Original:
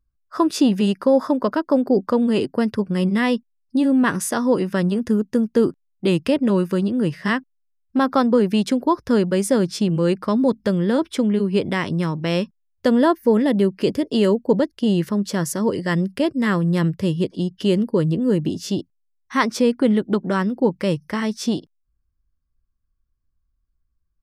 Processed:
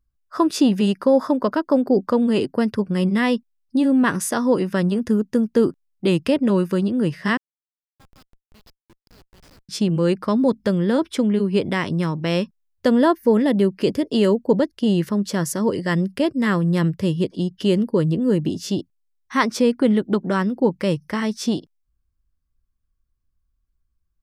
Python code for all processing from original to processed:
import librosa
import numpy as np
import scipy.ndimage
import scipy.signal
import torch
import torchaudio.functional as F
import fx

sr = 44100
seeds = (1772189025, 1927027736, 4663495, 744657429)

y = fx.chain(x, sr, fx.bandpass_q(hz=4900.0, q=8.8),
    fx.schmitt(flips_db=-41.0), at=(7.37, 9.69))